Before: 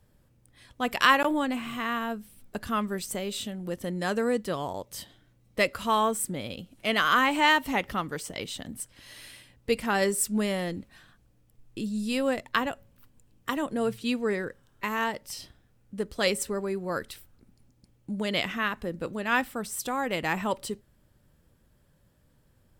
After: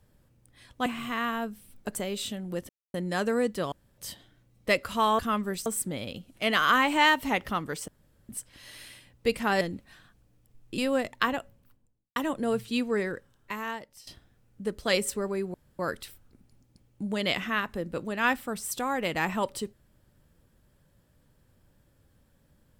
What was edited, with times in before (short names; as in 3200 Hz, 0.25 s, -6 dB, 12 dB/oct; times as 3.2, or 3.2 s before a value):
0.86–1.54 cut
2.63–3.1 move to 6.09
3.84 insert silence 0.25 s
4.62–4.88 room tone
8.31–8.72 room tone
10.04–10.65 cut
11.82–12.11 cut
12.72–13.49 studio fade out
14.39–15.4 fade out, to -15.5 dB
16.87 insert room tone 0.25 s